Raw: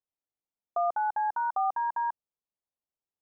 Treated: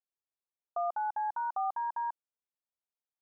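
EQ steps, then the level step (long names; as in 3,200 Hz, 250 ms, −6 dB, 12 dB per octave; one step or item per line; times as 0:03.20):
high-pass filter 940 Hz 6 dB per octave
low-pass filter 1,200 Hz 12 dB per octave
0.0 dB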